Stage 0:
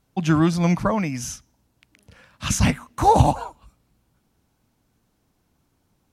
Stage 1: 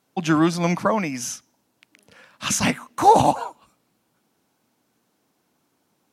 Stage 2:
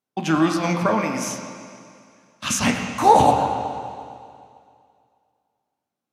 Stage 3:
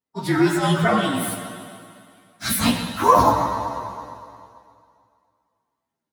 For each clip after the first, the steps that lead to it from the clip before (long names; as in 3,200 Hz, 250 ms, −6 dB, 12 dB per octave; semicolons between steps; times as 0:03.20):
high-pass filter 240 Hz 12 dB per octave; level +2.5 dB
noise gate −43 dBFS, range −18 dB; on a send at −1.5 dB: convolution reverb RT60 2.3 s, pre-delay 6 ms; on the sum: level −1 dB
partials spread apart or drawn together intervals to 116%; automatic gain control gain up to 4.5 dB; level +1 dB